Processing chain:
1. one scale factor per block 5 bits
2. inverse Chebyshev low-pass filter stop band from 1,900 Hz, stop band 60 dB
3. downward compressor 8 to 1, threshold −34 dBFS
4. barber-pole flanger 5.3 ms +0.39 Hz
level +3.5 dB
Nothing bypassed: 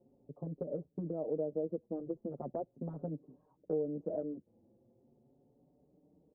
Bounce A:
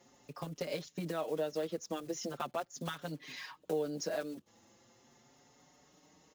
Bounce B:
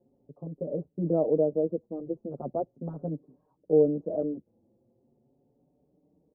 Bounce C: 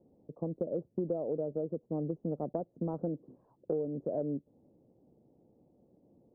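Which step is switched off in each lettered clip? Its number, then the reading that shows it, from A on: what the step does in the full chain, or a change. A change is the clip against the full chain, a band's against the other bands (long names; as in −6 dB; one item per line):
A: 2, 1 kHz band +10.0 dB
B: 3, average gain reduction 7.0 dB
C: 4, change in momentary loudness spread −4 LU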